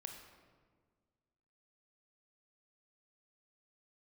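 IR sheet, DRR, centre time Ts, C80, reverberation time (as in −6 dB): 3.0 dB, 40 ms, 6.5 dB, 1.6 s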